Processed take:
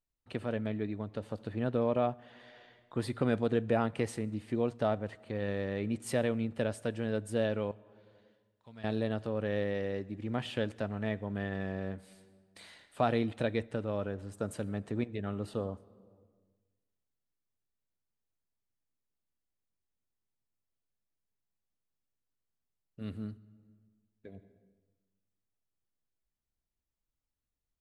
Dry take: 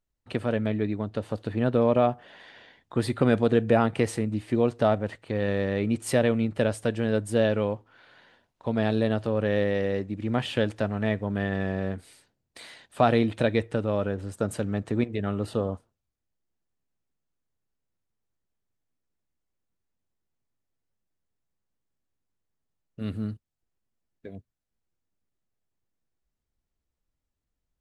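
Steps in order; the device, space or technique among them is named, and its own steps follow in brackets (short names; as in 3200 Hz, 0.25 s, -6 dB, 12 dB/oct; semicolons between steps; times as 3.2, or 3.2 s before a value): 7.71–8.84 passive tone stack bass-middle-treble 5-5-5; compressed reverb return (on a send at -10.5 dB: reverb RT60 1.2 s, pre-delay 72 ms + compressor 4:1, threshold -37 dBFS, peak gain reduction 18 dB); on the sum: gain -8 dB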